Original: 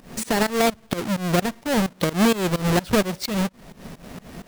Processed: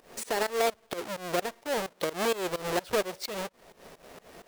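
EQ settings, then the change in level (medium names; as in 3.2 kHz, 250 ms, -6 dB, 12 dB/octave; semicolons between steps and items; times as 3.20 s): resonant low shelf 300 Hz -10.5 dB, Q 1.5; -7.5 dB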